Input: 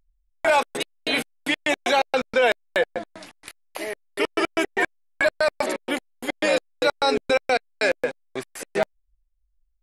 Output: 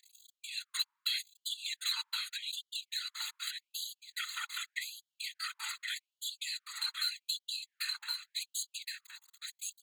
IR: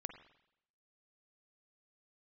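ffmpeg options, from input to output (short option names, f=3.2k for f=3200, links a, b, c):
-filter_complex "[0:a]aeval=exprs='val(0)+0.5*0.0158*sgn(val(0))':c=same,equalizer=f=830:t=o:w=0.72:g=-8.5,aecho=1:1:1.6:0.97,acrossover=split=280[a][b];[b]acompressor=threshold=-26dB:ratio=10[c];[a][c]amix=inputs=2:normalize=0,acrossover=split=5400[d][e];[d]aexciter=amount=9.1:drive=7.1:freq=4k[f];[f][e]amix=inputs=2:normalize=0,asoftclip=type=tanh:threshold=-20.5dB,asetrate=46722,aresample=44100,atempo=0.943874,asuperstop=centerf=5400:order=12:qfactor=2.8,aecho=1:1:1069:0.631,afftfilt=real='hypot(re,im)*cos(2*PI*random(0))':imag='hypot(re,im)*sin(2*PI*random(1))':win_size=512:overlap=0.75,afftfilt=real='re*gte(b*sr/1024,840*pow(2900/840,0.5+0.5*sin(2*PI*0.84*pts/sr)))':imag='im*gte(b*sr/1024,840*pow(2900/840,0.5+0.5*sin(2*PI*0.84*pts/sr)))':win_size=1024:overlap=0.75"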